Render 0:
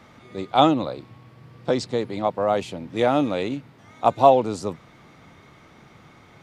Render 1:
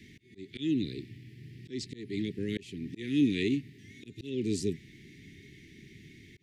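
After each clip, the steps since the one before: Chebyshev band-stop 410–1800 Hz, order 5; auto swell 0.314 s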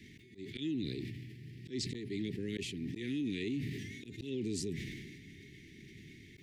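limiter -27.5 dBFS, peak gain reduction 11.5 dB; sustainer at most 31 dB/s; gain -2 dB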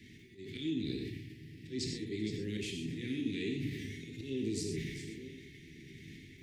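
reverse delay 0.685 s, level -12 dB; non-linear reverb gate 0.15 s flat, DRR 2 dB; gain -1.5 dB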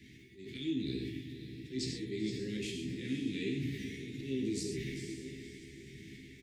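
doubler 15 ms -5 dB; diffused feedback echo 0.515 s, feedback 43%, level -11 dB; gain -1.5 dB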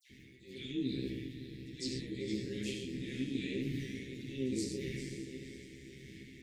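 dispersion lows, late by 94 ms, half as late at 2300 Hz; AM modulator 130 Hz, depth 30%; gain +1 dB

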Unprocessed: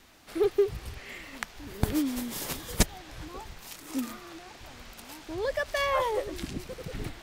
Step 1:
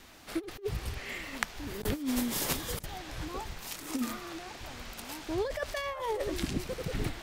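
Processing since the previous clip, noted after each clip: negative-ratio compressor -31 dBFS, ratio -0.5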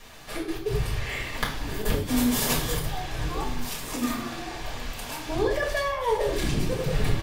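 one-sided fold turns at -20.5 dBFS; outdoor echo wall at 230 m, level -16 dB; reverb RT60 0.60 s, pre-delay 4 ms, DRR -4.5 dB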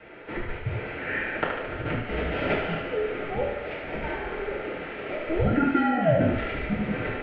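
mistuned SSB -310 Hz 380–2700 Hz; ten-band EQ 125 Hz -6 dB, 500 Hz +5 dB, 1000 Hz -9 dB; thinning echo 73 ms, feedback 67%, high-pass 420 Hz, level -6 dB; gain +6 dB

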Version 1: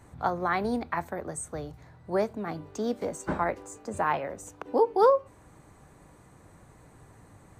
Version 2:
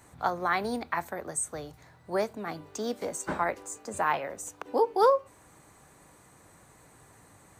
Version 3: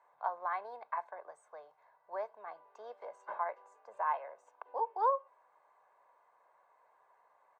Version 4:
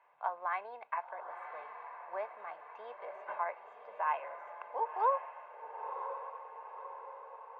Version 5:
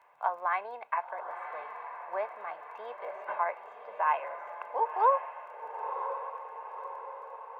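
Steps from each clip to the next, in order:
tilt +2 dB/oct
ladder band-pass 910 Hz, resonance 60%; comb 1.9 ms, depth 59%
synth low-pass 2700 Hz, resonance Q 4.1; diffused feedback echo 1.015 s, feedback 55%, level -8.5 dB; gain -1 dB
crackle 15/s -60 dBFS; gain +5.5 dB

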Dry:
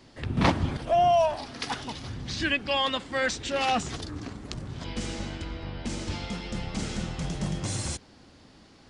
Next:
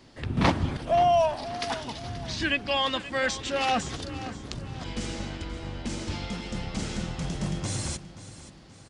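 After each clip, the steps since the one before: feedback echo 0.529 s, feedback 41%, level -15 dB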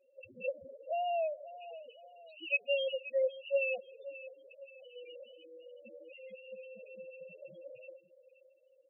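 double band-pass 1200 Hz, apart 2.3 oct; loudest bins only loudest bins 4; gain +1 dB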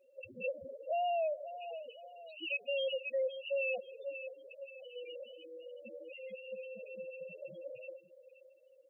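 limiter -32 dBFS, peak gain reduction 10.5 dB; gain +3.5 dB

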